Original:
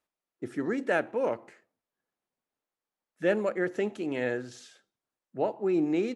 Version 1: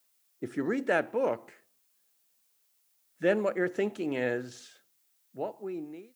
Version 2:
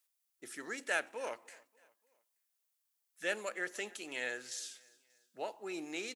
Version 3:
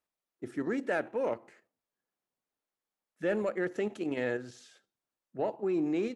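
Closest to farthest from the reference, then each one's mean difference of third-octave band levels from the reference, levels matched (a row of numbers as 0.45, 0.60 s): 3, 1, 2; 1.0, 4.0, 10.0 dB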